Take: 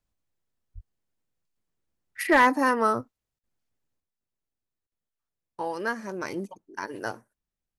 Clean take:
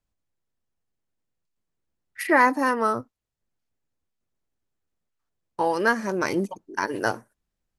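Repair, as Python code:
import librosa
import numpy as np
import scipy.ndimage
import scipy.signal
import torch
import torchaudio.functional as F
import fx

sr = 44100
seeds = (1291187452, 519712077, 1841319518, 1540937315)

y = fx.fix_declip(x, sr, threshold_db=-11.5)
y = fx.highpass(y, sr, hz=140.0, slope=24, at=(0.74, 0.86), fade=0.02)
y = fx.fix_interpolate(y, sr, at_s=(3.39, 4.87), length_ms=45.0)
y = fx.gain(y, sr, db=fx.steps((0.0, 0.0), (4.0, 8.0)))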